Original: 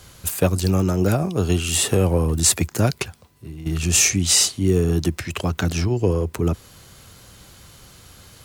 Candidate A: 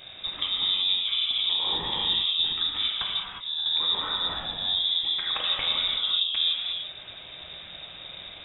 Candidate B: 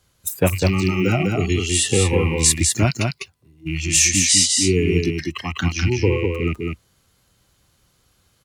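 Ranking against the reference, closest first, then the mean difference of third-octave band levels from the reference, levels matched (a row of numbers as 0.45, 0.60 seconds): B, A; 9.5, 16.5 decibels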